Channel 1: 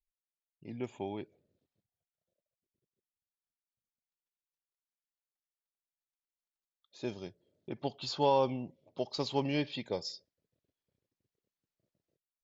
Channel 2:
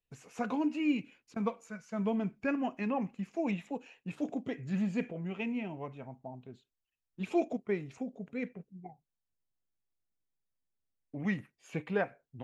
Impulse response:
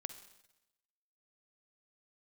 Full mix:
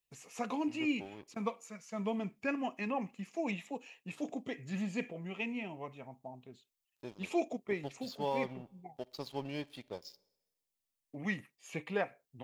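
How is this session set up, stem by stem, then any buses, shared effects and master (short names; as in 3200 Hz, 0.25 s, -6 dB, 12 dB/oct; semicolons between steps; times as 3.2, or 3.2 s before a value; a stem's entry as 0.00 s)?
-9.0 dB, 0.00 s, send -9 dB, crossover distortion -46 dBFS
-0.5 dB, 0.00 s, no send, tilt +2 dB/oct; notch 1500 Hz, Q 6.1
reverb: on, RT60 0.95 s, pre-delay 44 ms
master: dry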